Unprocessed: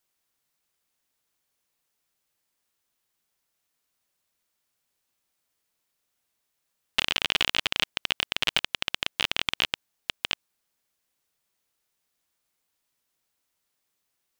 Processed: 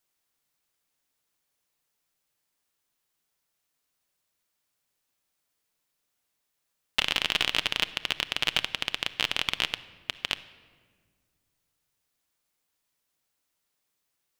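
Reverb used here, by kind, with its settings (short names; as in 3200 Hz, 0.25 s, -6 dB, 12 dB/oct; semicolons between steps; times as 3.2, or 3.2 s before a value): shoebox room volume 2100 m³, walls mixed, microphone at 0.4 m; gain -1 dB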